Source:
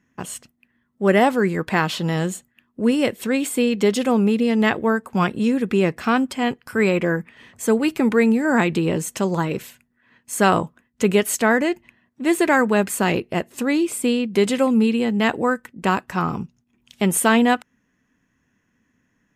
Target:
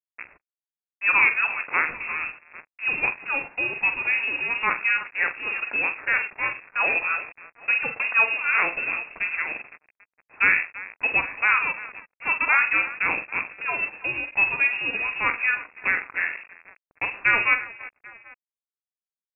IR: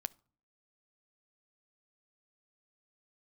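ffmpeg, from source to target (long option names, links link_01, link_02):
-filter_complex "[0:a]aecho=1:1:45|100|337|790:0.422|0.15|0.2|0.133[link_01];[1:a]atrim=start_sample=2205,atrim=end_sample=3528,asetrate=23373,aresample=44100[link_02];[link_01][link_02]afir=irnorm=-1:irlink=0,asettb=1/sr,asplit=3[link_03][link_04][link_05];[link_03]atrim=end=6.164[link_06];[link_04]atrim=start=6.16:end=8.78,asetpts=PTS-STARTPTS,afade=type=in:duration=0.004:curve=qsin,afade=type=out:start_time=2.616:duration=0.004:curve=qsin,afreqshift=17[link_07];[link_05]atrim=start=8.776[link_08];[link_06][link_07]acrossfade=duration=0.004:curve1=hsin:curve2=qsin[link_09];[link_09][link_08]acrossfade=duration=0.004:curve1=qsin:curve2=hsin,aeval=exprs='sgn(val(0))*max(abs(val(0))-0.0316,0)':channel_layout=same,highpass=frequency=400:width=0.5412,highpass=frequency=400:width=1.3066,lowpass=frequency=2600:width_type=q:width=0.5098,lowpass=frequency=2600:width_type=q:width=0.6013,lowpass=frequency=2600:width_type=q:width=0.9,lowpass=frequency=2600:width_type=q:width=2.563,afreqshift=-3000,volume=-2.5dB"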